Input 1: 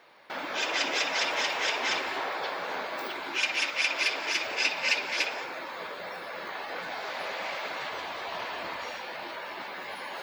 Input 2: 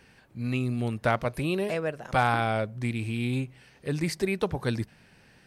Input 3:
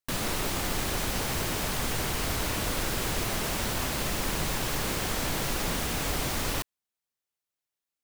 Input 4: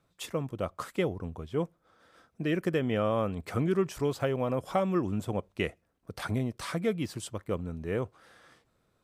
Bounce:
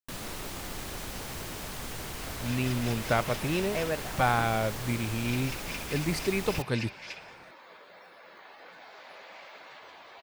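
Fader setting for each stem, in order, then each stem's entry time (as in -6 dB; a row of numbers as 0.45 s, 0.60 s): -13.5 dB, -1.5 dB, -8.5 dB, mute; 1.90 s, 2.05 s, 0.00 s, mute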